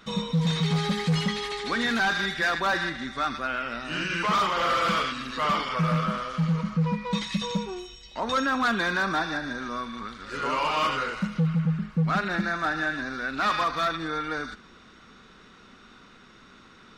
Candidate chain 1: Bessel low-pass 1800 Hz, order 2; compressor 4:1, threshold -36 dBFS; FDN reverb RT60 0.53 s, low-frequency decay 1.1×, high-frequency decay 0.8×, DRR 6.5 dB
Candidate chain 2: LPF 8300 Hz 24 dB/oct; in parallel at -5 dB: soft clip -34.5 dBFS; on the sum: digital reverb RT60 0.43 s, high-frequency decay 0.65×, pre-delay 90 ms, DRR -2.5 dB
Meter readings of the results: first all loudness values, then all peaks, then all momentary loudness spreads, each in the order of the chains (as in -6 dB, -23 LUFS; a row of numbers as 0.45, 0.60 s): -36.5, -21.5 LUFS; -24.5, -5.5 dBFS; 17, 8 LU